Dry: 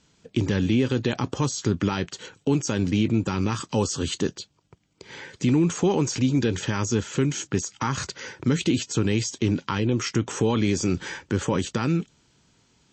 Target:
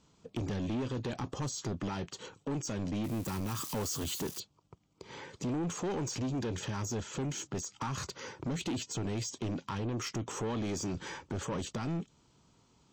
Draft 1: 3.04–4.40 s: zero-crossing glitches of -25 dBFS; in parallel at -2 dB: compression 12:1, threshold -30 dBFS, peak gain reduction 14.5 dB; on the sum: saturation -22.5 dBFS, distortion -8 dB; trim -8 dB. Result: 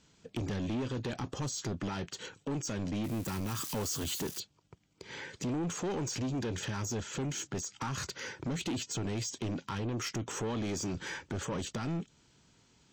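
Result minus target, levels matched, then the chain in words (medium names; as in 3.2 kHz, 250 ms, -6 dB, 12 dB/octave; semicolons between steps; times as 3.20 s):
2 kHz band +2.5 dB
3.04–4.40 s: zero-crossing glitches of -25 dBFS; in parallel at -2 dB: compression 12:1, threshold -30 dBFS, peak gain reduction 14.5 dB + resonant high shelf 1.8 kHz -13 dB, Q 3; on the sum: saturation -22.5 dBFS, distortion -8 dB; trim -8 dB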